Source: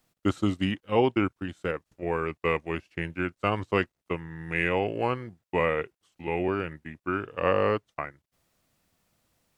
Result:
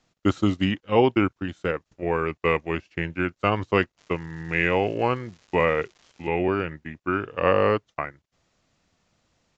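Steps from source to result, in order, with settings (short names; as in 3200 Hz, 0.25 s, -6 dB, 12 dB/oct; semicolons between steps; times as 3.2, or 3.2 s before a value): 3.97–6.27 crackle 340/s -45 dBFS; downsampling 16000 Hz; gain +4 dB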